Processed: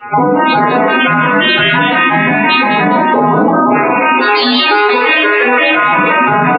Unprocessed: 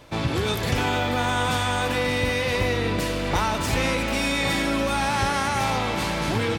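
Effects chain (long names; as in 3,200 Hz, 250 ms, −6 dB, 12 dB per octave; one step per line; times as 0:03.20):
vocoder with an arpeggio as carrier minor triad, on G#3, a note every 174 ms
0:04.20–0:05.70: high-pass filter 500 Hz 24 dB per octave
gate on every frequency bin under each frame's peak −10 dB weak
0:03.11–0:03.70: low-pass filter 1,300 Hz 24 dB per octave
compressor whose output falls as the input rises −37 dBFS, ratio −0.5
soft clipping −21.5 dBFS, distortion −32 dB
spectral peaks only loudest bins 16
echo with shifted repeats 204 ms, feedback 34%, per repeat +40 Hz, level −10.5 dB
rectangular room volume 180 cubic metres, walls furnished, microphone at 4.4 metres
boost into a limiter +27.5 dB
level −1 dB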